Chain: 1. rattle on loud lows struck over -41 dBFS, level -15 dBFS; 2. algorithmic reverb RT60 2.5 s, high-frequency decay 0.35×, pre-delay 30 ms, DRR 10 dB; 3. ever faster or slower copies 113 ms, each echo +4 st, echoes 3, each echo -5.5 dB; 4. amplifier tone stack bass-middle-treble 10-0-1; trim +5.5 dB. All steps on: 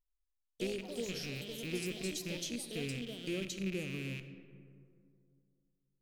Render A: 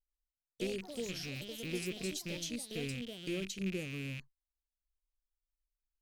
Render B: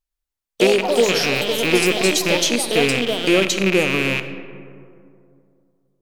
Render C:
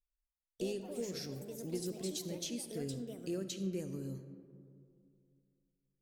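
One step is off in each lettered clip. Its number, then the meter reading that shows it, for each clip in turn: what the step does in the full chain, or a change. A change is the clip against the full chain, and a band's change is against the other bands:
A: 2, momentary loudness spread change -3 LU; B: 4, 1 kHz band +10.5 dB; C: 1, 2 kHz band -13.0 dB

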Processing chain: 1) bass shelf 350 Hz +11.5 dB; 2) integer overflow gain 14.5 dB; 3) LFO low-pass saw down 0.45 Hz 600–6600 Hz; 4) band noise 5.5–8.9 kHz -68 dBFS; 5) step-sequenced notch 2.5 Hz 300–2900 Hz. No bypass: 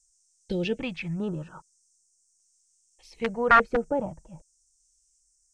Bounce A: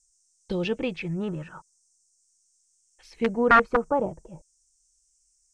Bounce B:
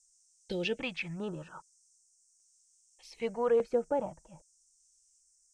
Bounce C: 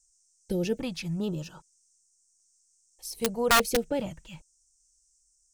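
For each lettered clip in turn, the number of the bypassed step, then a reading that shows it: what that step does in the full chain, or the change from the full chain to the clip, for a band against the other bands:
5, loudness change +1.5 LU; 1, 500 Hz band +7.5 dB; 3, 4 kHz band +9.5 dB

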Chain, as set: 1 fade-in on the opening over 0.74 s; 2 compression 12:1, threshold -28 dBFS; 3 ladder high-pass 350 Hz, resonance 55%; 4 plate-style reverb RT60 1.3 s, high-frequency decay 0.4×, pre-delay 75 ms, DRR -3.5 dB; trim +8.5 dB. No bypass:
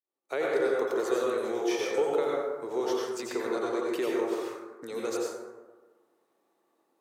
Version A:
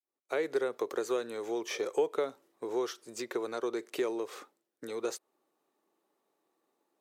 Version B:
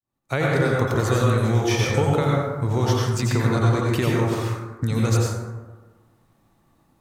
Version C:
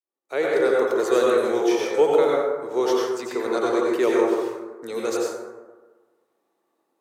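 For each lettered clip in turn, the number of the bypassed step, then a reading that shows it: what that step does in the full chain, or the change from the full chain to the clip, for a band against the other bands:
4, 8 kHz band +2.0 dB; 3, 125 Hz band +28.0 dB; 2, mean gain reduction 6.0 dB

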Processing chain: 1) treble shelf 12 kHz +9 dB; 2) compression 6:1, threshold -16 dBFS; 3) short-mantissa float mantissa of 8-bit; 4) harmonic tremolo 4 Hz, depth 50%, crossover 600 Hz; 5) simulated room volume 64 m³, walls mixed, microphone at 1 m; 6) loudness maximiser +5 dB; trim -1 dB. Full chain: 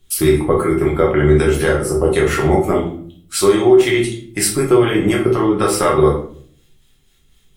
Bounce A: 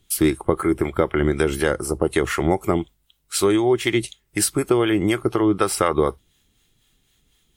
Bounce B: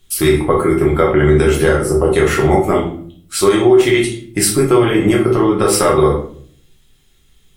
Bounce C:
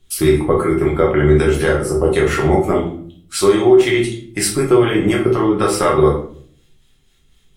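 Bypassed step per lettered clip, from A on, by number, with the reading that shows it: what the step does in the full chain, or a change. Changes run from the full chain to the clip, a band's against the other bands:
5, momentary loudness spread change -2 LU; 4, crest factor change -1.5 dB; 1, 8 kHz band -2.0 dB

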